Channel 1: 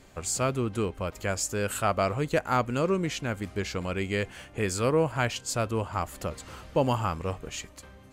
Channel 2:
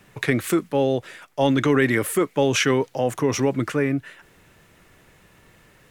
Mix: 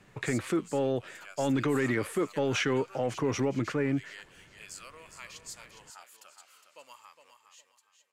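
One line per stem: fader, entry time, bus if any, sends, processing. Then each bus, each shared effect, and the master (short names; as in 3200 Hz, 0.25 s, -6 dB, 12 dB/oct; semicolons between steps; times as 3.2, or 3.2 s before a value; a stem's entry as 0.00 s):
6.69 s -10.5 dB -> 7.47 s -18.5 dB, 0.00 s, no send, echo send -8.5 dB, HPF 1400 Hz 12 dB/oct; cascading phaser falling 0.59 Hz
-4.5 dB, 0.00 s, no send, no echo send, soft clip -10 dBFS, distortion -21 dB; LPF 9600 Hz 12 dB/oct; high shelf 4400 Hz -8.5 dB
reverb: off
echo: feedback echo 0.411 s, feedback 29%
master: limiter -20 dBFS, peak gain reduction 5.5 dB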